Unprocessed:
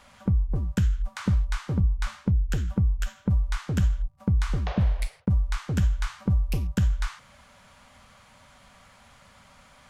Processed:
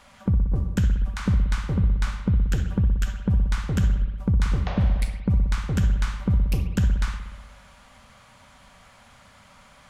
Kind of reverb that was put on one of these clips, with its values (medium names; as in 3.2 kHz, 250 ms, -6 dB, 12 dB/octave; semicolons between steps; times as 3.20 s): spring tank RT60 1.3 s, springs 60 ms, chirp 55 ms, DRR 7 dB; trim +1.5 dB